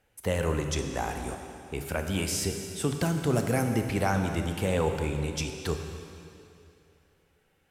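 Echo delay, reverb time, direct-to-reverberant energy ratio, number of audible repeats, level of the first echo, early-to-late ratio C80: no echo audible, 2.7 s, 4.5 dB, no echo audible, no echo audible, 6.0 dB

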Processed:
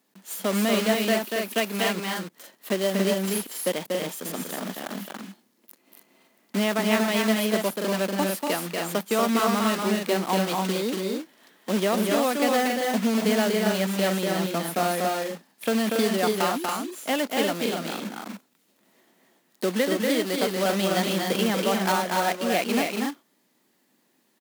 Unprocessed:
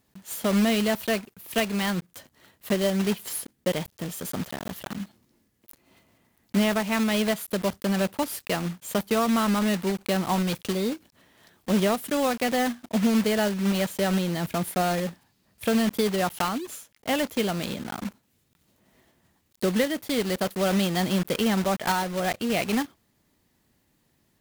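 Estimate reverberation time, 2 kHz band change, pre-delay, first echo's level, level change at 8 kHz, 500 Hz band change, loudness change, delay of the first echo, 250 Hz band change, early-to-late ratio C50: no reverb audible, +2.5 dB, no reverb audible, −3.5 dB, +2.5 dB, +2.5 dB, +1.0 dB, 239 ms, −0.5 dB, no reverb audible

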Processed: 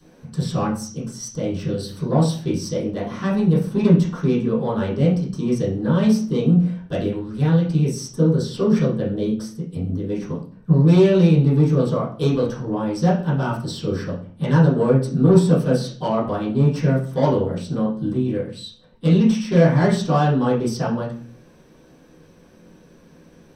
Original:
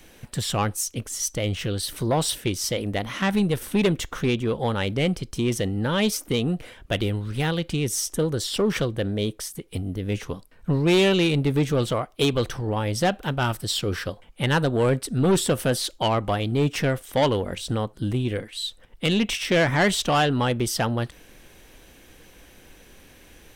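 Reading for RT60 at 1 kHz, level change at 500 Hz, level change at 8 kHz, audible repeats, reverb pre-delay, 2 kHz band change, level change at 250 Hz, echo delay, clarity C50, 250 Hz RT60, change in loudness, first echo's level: 0.45 s, +3.5 dB, −8.0 dB, no echo audible, 3 ms, −5.5 dB, +7.0 dB, no echo audible, 7.0 dB, 0.70 s, +4.5 dB, no echo audible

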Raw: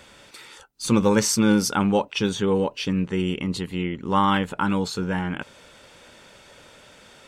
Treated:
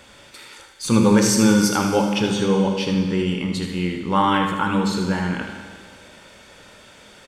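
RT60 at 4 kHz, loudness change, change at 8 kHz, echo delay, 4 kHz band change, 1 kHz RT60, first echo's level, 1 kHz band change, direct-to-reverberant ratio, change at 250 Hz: 1.8 s, +3.5 dB, +3.0 dB, 78 ms, +3.0 dB, 1.8 s, −8.5 dB, +3.0 dB, 2.0 dB, +4.0 dB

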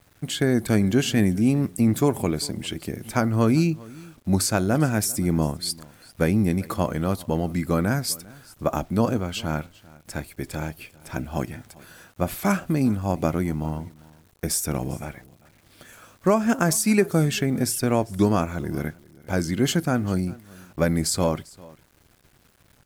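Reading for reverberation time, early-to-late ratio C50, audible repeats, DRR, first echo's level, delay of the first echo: no reverb audible, no reverb audible, 1, no reverb audible, −22.5 dB, 397 ms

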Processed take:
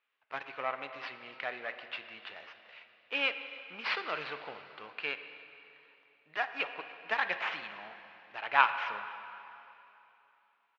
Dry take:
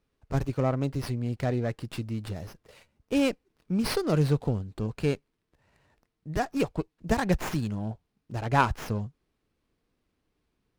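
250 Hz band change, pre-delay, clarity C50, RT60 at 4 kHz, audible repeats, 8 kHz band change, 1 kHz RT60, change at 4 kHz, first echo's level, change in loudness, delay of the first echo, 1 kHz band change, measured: −25.0 dB, 6 ms, 9.0 dB, 2.8 s, 1, below −20 dB, 3.0 s, +0.5 dB, −23.0 dB, −5.5 dB, 290 ms, −1.5 dB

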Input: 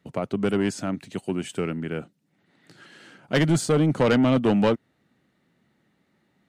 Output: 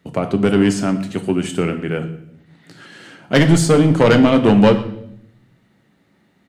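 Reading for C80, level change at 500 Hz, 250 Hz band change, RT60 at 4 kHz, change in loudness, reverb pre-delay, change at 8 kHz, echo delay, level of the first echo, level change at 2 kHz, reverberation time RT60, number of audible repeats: 14.0 dB, +8.5 dB, +8.5 dB, 0.65 s, +8.5 dB, 8 ms, +8.0 dB, 118 ms, −20.5 dB, +8.5 dB, 0.70 s, 1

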